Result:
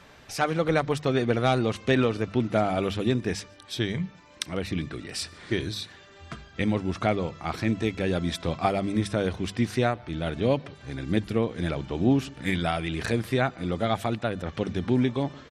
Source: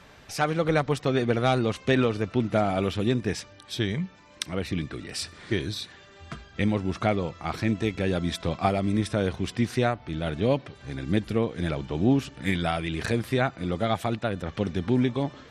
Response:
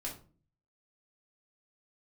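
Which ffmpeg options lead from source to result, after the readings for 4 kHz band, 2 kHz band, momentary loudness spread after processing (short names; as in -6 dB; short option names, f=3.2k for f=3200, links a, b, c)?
0.0 dB, 0.0 dB, 10 LU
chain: -filter_complex "[0:a]bandreject=f=50:t=h:w=6,bandreject=f=100:t=h:w=6,bandreject=f=150:t=h:w=6,bandreject=f=200:t=h:w=6,asplit=2[a][b];[b]adelay=145.8,volume=-27dB,highshelf=f=4k:g=-3.28[c];[a][c]amix=inputs=2:normalize=0"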